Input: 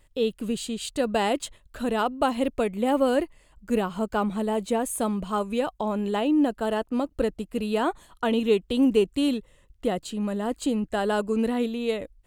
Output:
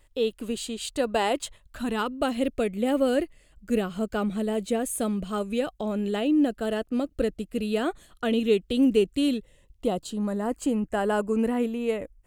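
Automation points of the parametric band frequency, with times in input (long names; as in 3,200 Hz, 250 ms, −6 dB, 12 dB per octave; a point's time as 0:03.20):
parametric band −14 dB 0.44 octaves
0:01.26 170 Hz
0:02.19 950 Hz
0:09.35 950 Hz
0:10.56 3,800 Hz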